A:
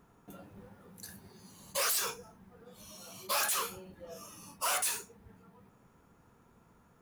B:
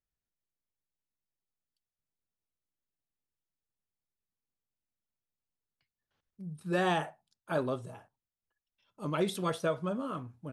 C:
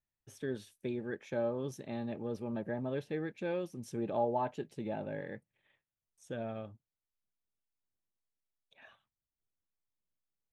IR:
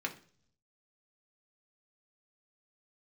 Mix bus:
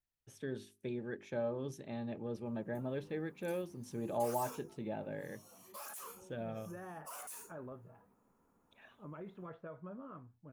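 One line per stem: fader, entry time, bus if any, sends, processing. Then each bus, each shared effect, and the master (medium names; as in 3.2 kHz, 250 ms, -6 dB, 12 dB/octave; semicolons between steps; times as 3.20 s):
-16.0 dB, 2.45 s, bus A, no send, graphic EQ 125/250/500/1000/4000 Hz -4/+8/+5/+7/-7 dB
-13.5 dB, 0.00 s, bus A, no send, low-pass 1.9 kHz 24 dB/octave
-3.0 dB, 0.00 s, no bus, no send, hum notches 50/100/150/200/250/300/350/400 Hz
bus A: 0.0 dB, treble shelf 4.3 kHz +9 dB; peak limiter -39.5 dBFS, peak gain reduction 8.5 dB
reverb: none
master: bass shelf 140 Hz +3 dB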